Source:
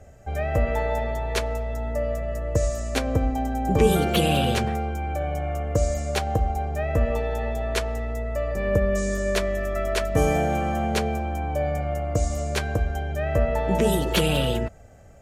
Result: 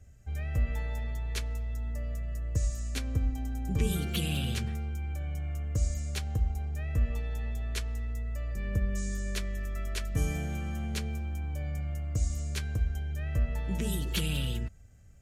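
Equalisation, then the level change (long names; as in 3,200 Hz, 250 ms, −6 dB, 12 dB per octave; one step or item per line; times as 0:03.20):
guitar amp tone stack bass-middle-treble 6-0-2
+8.0 dB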